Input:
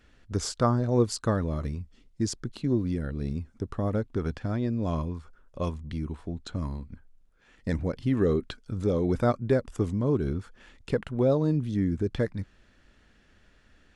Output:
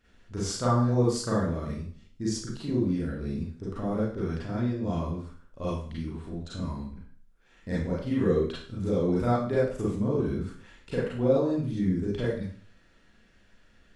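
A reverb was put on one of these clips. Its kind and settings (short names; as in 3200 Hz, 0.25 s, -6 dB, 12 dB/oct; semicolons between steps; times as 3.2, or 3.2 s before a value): Schroeder reverb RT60 0.48 s, combs from 33 ms, DRR -8 dB; gain -8.5 dB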